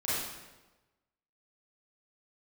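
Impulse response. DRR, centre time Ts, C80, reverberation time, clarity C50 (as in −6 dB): −11.5 dB, 93 ms, 0.5 dB, 1.1 s, −3.5 dB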